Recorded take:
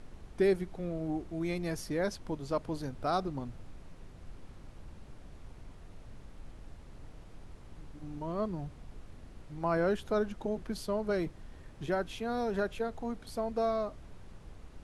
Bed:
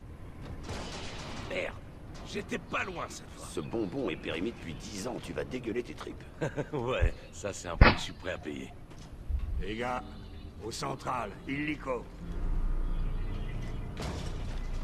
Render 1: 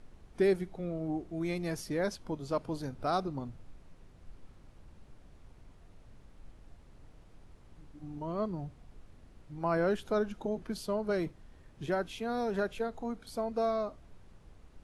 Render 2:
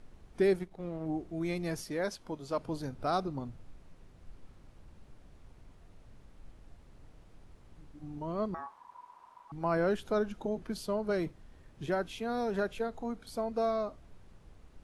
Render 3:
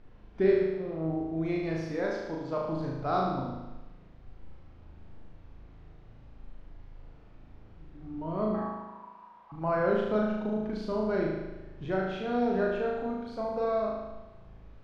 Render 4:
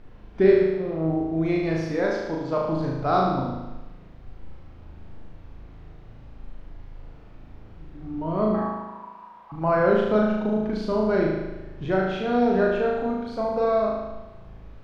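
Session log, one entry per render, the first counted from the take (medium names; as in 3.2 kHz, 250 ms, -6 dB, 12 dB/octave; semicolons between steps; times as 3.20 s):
noise print and reduce 6 dB
0.59–1.06 s: power-law waveshaper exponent 1.4; 1.84–2.58 s: bass shelf 240 Hz -7.5 dB; 8.54–9.52 s: ring modulator 980 Hz
distance through air 210 m; on a send: flutter echo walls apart 6.4 m, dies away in 1.1 s
trim +7 dB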